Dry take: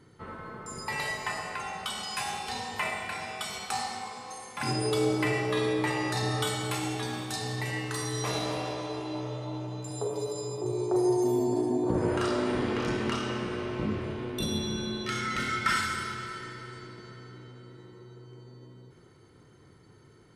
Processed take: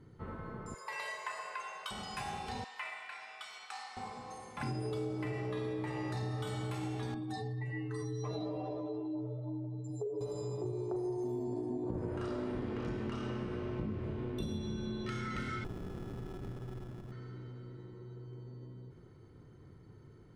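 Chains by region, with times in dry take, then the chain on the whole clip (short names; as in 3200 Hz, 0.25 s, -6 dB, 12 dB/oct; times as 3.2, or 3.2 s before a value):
0.74–1.91 HPF 800 Hz + comb 1.9 ms, depth 69%
2.64–3.97 HPF 1300 Hz + high shelf 7900 Hz -11.5 dB
7.14–10.21 spectral contrast raised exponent 1.9 + bell 110 Hz -8 dB 0.66 oct
15.64–17.12 sample-rate reducer 1700 Hz + compressor 12:1, threshold -37 dBFS + running maximum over 33 samples
whole clip: tilt -2.5 dB/oct; compressor, threshold -29 dBFS; gain -5.5 dB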